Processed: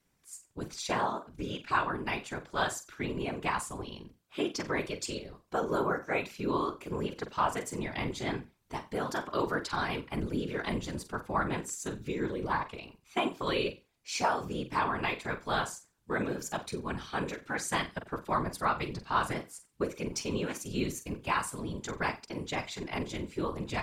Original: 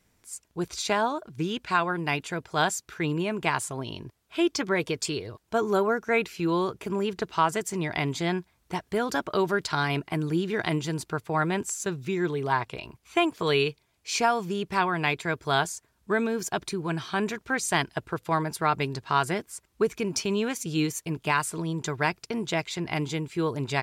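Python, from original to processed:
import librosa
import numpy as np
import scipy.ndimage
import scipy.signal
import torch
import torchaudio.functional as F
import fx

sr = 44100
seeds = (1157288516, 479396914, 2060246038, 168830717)

y = fx.dynamic_eq(x, sr, hz=1100.0, q=4.1, threshold_db=-41.0, ratio=4.0, max_db=5)
y = fx.room_flutter(y, sr, wall_m=7.7, rt60_s=0.26)
y = fx.whisperise(y, sr, seeds[0])
y = y * 10.0 ** (-7.0 / 20.0)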